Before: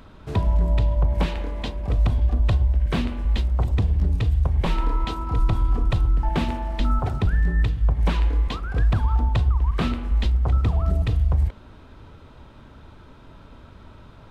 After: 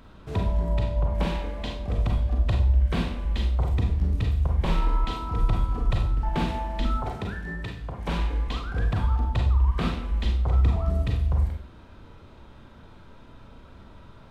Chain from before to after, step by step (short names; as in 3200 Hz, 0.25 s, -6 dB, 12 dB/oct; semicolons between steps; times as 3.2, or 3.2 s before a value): 6.97–8.09 HPF 210 Hz 6 dB/oct; Schroeder reverb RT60 0.43 s, combs from 32 ms, DRR 1 dB; gain -4.5 dB